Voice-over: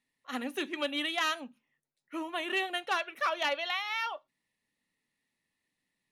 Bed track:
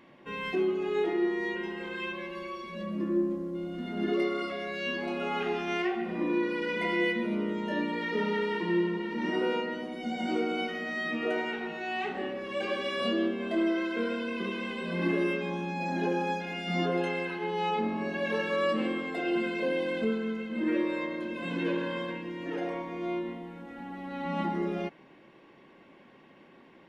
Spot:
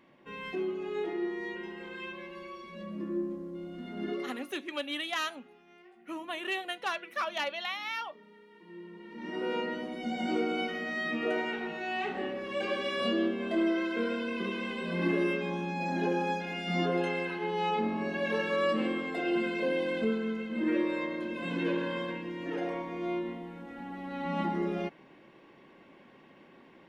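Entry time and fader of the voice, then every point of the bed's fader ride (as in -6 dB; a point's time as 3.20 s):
3.95 s, -2.5 dB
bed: 4.12 s -5.5 dB
4.66 s -27 dB
8.48 s -27 dB
9.63 s -0.5 dB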